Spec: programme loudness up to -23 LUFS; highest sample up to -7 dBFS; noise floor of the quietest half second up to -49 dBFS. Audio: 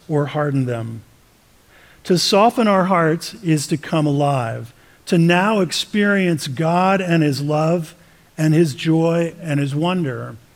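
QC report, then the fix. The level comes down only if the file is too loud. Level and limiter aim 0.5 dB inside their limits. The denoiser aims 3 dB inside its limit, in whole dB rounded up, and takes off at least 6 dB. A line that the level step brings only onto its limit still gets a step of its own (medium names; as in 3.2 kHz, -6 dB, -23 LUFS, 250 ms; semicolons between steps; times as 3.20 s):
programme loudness -18.0 LUFS: fail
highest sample -4.0 dBFS: fail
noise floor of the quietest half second -53 dBFS: pass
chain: trim -5.5 dB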